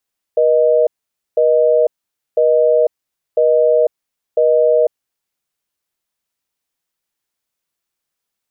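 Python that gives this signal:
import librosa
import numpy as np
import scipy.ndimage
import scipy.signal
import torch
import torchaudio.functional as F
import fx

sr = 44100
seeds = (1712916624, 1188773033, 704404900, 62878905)

y = fx.call_progress(sr, length_s=4.58, kind='busy tone', level_db=-12.0)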